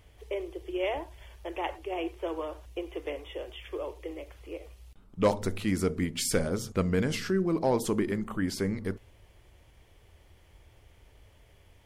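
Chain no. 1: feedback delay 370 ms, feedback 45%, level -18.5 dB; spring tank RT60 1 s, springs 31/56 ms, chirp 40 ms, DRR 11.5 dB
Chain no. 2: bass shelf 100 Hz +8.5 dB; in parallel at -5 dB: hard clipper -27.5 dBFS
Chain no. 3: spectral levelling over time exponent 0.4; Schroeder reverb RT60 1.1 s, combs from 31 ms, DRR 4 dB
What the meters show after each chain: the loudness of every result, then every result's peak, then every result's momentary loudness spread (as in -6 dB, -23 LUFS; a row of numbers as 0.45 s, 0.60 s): -31.0 LUFS, -28.0 LUFS, -25.0 LUFS; -14.5 dBFS, -10.5 dBFS, -8.0 dBFS; 16 LU, 14 LU, 12 LU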